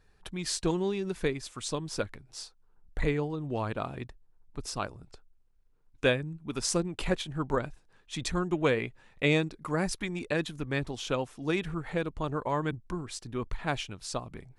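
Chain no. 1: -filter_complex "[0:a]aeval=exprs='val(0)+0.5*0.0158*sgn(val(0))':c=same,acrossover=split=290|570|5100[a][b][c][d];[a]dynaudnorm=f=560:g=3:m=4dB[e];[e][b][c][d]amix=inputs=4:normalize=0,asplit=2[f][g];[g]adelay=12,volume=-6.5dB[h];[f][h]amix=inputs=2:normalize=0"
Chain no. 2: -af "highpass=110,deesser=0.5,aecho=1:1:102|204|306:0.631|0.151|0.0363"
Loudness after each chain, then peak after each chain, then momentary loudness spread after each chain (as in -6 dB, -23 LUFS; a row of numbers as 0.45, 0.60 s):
-28.5, -31.0 LUFS; -10.0, -12.0 dBFS; 14, 12 LU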